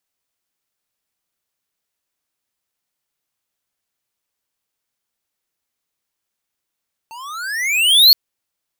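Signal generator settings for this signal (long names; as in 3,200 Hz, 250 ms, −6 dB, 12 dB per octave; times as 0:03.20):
pitch glide with a swell square, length 1.02 s, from 886 Hz, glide +28 semitones, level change +29 dB, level −6 dB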